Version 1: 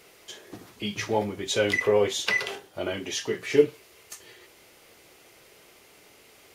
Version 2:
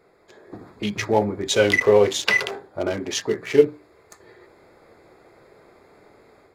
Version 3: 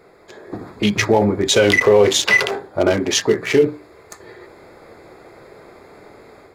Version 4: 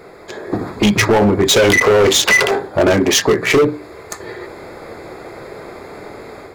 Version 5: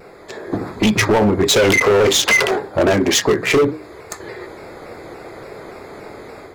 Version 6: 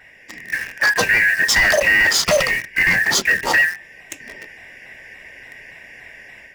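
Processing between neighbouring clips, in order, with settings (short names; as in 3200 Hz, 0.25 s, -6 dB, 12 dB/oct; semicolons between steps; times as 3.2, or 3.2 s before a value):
Wiener smoothing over 15 samples; notches 60/120/180/240/300 Hz; AGC gain up to 7 dB
maximiser +12.5 dB; gain -3.5 dB
in parallel at +1 dB: compressor, threshold -22 dBFS, peak gain reduction 13 dB; on the sum: overloaded stage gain 11.5 dB; gain +3.5 dB
shaped vibrato saw down 3.5 Hz, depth 100 cents; gain -2 dB
four-band scrambler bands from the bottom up 2143; in parallel at -5 dB: bit-crush 4-bit; on the sum: gain -5.5 dB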